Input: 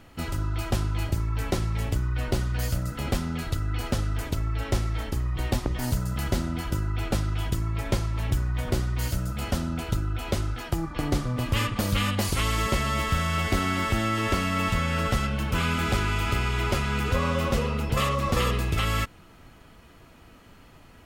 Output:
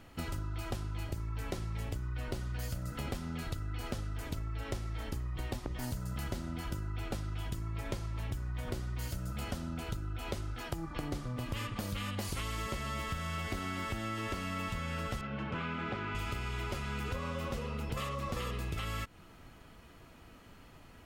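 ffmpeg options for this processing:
ffmpeg -i in.wav -filter_complex "[0:a]asettb=1/sr,asplit=3[link_01][link_02][link_03];[link_01]atrim=end=15.214[link_04];[link_02]atrim=start=15.21:end=16.15,asetpts=PTS-STARTPTS,afade=type=in:duration=0.004:curve=qsin,afade=type=out:start_time=0.936:duration=0.004:curve=qsin,highpass=130,lowpass=2500[link_05];[link_03]atrim=start=16.146[link_06];[link_04][link_05]acrossfade=duration=0.004:curve1=hsin:curve2=qsin[link_07];[link_07][link_06]acrossfade=duration=0.004:curve1=qsin:curve2=hsin,acompressor=threshold=-30dB:ratio=6,volume=-4dB" out.wav

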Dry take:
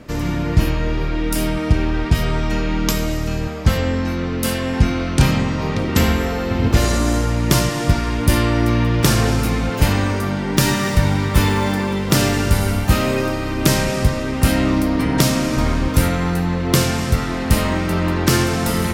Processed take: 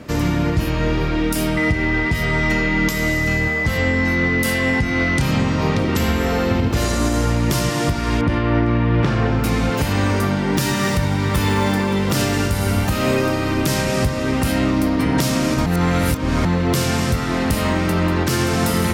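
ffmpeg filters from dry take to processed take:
ffmpeg -i in.wav -filter_complex "[0:a]asettb=1/sr,asplit=3[link_01][link_02][link_03];[link_01]atrim=end=1.574[link_04];[link_02]atrim=start=1.57:end=5.21,asetpts=PTS-STARTPTS,afade=type=in:duration=0.004:curve=qsin,afade=type=out:start_time=3.636:duration=0.004:curve=qsin,aeval=exprs='val(0)+0.0794*sin(2*PI*2000*n/s)':channel_layout=same[link_05];[link_03]atrim=start=5.206[link_06];[link_04][link_05]acrossfade=duration=0.004:curve1=hsin:curve2=qsin[link_07];[link_07][link_06]acrossfade=duration=0.004:curve1=qsin:curve2=hsin,asettb=1/sr,asplit=3[link_08][link_09][link_10];[link_08]atrim=end=8.214[link_11];[link_09]atrim=start=8.21:end=9.44,asetpts=PTS-STARTPTS,afade=type=in:duration=0.004:curve=qsin,afade=type=out:start_time=1.226:duration=0.004:curve=qsin,lowpass=2400[link_12];[link_10]atrim=start=9.436[link_13];[link_11][link_12]acrossfade=duration=0.004:curve1=hsin:curve2=qsin[link_14];[link_14][link_13]acrossfade=duration=0.004:curve1=qsin:curve2=hsin,asplit=3[link_15][link_16][link_17];[link_15]atrim=end=15.662[link_18];[link_16]atrim=start=15.658:end=16.452,asetpts=PTS-STARTPTS,areverse[link_19];[link_17]atrim=start=16.448[link_20];[link_18][link_19]acrossfade=duration=0.004:curve1=hsin:curve2=hsin[link_21];[link_21][link_20]acrossfade=duration=0.004:curve1=hsin:curve2=hsin,highpass=54,alimiter=limit=-12dB:level=0:latency=1:release=239,volume=3.5dB" out.wav

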